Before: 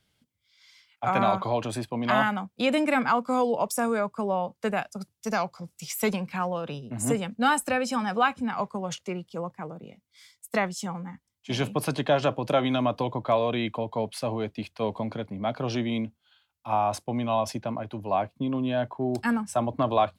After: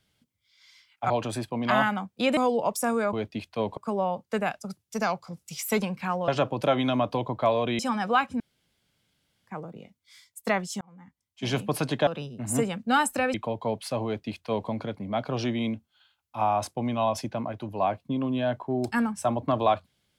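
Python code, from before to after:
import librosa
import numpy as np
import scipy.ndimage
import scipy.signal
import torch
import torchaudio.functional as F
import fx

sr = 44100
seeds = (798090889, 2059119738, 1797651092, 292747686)

y = fx.edit(x, sr, fx.cut(start_s=1.1, length_s=0.4),
    fx.cut(start_s=2.77, length_s=0.55),
    fx.swap(start_s=6.59, length_s=1.27, other_s=12.14, other_length_s=1.51),
    fx.room_tone_fill(start_s=8.47, length_s=1.07),
    fx.fade_in_span(start_s=10.88, length_s=0.71),
    fx.duplicate(start_s=14.36, length_s=0.64, to_s=4.08), tone=tone)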